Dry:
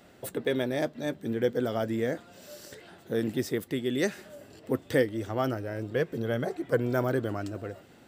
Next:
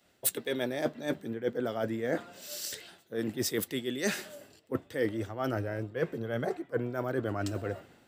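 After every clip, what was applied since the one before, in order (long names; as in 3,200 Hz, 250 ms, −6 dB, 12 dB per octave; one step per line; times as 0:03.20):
low-shelf EQ 490 Hz −4.5 dB
reversed playback
downward compressor 8 to 1, threshold −37 dBFS, peak gain reduction 16 dB
reversed playback
multiband upward and downward expander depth 100%
level +8.5 dB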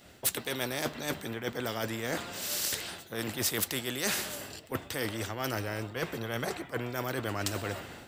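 parametric band 70 Hz +7.5 dB 1.9 octaves
automatic gain control gain up to 4 dB
every bin compressed towards the loudest bin 2 to 1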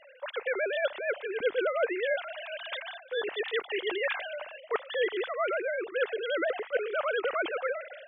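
three sine waves on the formant tracks
level +3 dB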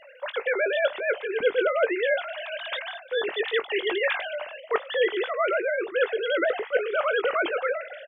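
double-tracking delay 20 ms −11.5 dB
level +5 dB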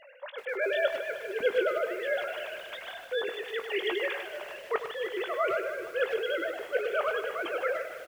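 amplitude tremolo 1.3 Hz, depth 60%
far-end echo of a speakerphone 100 ms, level −8 dB
feedback echo at a low word length 153 ms, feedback 80%, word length 7 bits, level −13 dB
level −3.5 dB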